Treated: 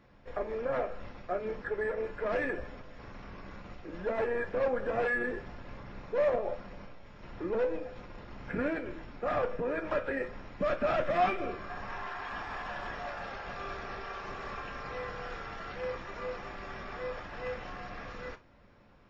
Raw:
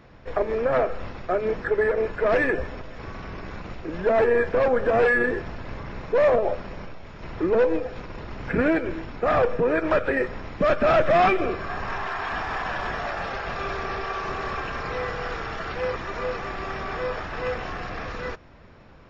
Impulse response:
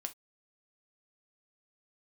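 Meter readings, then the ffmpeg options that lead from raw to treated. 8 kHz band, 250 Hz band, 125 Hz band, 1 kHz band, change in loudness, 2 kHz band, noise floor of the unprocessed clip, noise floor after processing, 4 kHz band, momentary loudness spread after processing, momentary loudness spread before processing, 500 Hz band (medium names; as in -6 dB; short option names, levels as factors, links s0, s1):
no reading, -11.0 dB, -11.5 dB, -9.5 dB, -10.5 dB, -10.0 dB, -47 dBFS, -57 dBFS, -10.0 dB, 17 LU, 17 LU, -10.5 dB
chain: -filter_complex "[1:a]atrim=start_sample=2205[s0];[0:a][s0]afir=irnorm=-1:irlink=0,volume=0.376"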